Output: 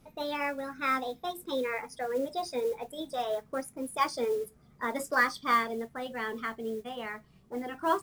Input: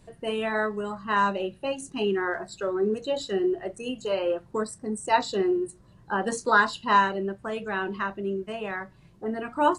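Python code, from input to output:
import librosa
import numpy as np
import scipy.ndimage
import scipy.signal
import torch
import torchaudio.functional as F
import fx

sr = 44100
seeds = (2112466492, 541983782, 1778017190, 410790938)

y = fx.speed_glide(x, sr, from_pct=134, to_pct=110)
y = fx.mod_noise(y, sr, seeds[0], snr_db=25)
y = y * 10.0 ** (-5.5 / 20.0)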